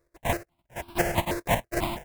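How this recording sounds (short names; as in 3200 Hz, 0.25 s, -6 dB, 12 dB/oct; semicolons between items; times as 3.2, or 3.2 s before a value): a buzz of ramps at a fixed pitch in blocks of 128 samples; chopped level 3.4 Hz, depth 60%, duty 25%; aliases and images of a low sample rate 1300 Hz, jitter 20%; notches that jump at a steady rate 6.1 Hz 820–1900 Hz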